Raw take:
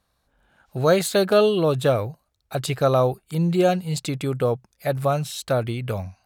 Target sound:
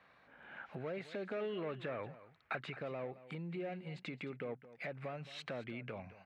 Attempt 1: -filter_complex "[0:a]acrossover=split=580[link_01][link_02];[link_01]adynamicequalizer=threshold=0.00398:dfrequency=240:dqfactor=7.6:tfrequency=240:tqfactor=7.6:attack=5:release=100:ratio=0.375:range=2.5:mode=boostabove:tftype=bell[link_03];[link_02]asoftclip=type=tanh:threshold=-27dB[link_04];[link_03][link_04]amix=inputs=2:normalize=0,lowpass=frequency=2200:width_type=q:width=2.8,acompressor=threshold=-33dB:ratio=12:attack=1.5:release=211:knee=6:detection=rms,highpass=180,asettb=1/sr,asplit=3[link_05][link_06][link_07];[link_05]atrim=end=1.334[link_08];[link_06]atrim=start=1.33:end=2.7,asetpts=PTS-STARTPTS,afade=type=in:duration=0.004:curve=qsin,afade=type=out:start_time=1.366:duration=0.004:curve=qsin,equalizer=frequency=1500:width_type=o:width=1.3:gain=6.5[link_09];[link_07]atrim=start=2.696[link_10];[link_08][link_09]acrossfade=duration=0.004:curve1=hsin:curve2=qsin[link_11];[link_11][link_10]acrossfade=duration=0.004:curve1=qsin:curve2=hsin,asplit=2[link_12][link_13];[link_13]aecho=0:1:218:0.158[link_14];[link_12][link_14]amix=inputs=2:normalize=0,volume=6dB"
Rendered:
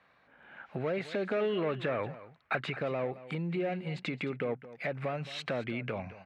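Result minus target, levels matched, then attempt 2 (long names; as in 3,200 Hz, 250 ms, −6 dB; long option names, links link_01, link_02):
downward compressor: peak gain reduction −9 dB
-filter_complex "[0:a]acrossover=split=580[link_01][link_02];[link_01]adynamicequalizer=threshold=0.00398:dfrequency=240:dqfactor=7.6:tfrequency=240:tqfactor=7.6:attack=5:release=100:ratio=0.375:range=2.5:mode=boostabove:tftype=bell[link_03];[link_02]asoftclip=type=tanh:threshold=-27dB[link_04];[link_03][link_04]amix=inputs=2:normalize=0,lowpass=frequency=2200:width_type=q:width=2.8,acompressor=threshold=-43dB:ratio=12:attack=1.5:release=211:knee=6:detection=rms,highpass=180,asettb=1/sr,asplit=3[link_05][link_06][link_07];[link_05]atrim=end=1.334[link_08];[link_06]atrim=start=1.33:end=2.7,asetpts=PTS-STARTPTS,afade=type=in:duration=0.004:curve=qsin,afade=type=out:start_time=1.366:duration=0.004:curve=qsin,equalizer=frequency=1500:width_type=o:width=1.3:gain=6.5[link_09];[link_07]atrim=start=2.696[link_10];[link_08][link_09]acrossfade=duration=0.004:curve1=hsin:curve2=qsin[link_11];[link_11][link_10]acrossfade=duration=0.004:curve1=qsin:curve2=hsin,asplit=2[link_12][link_13];[link_13]aecho=0:1:218:0.158[link_14];[link_12][link_14]amix=inputs=2:normalize=0,volume=6dB"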